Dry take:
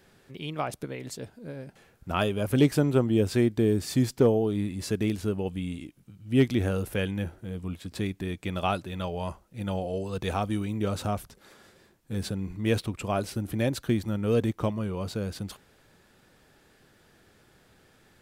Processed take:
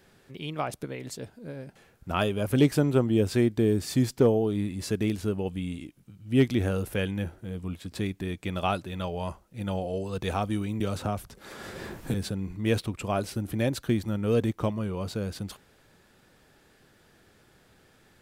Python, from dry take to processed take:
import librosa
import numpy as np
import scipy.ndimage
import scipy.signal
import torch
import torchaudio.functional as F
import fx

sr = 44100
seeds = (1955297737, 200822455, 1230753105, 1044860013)

y = fx.band_squash(x, sr, depth_pct=100, at=(10.8, 12.14))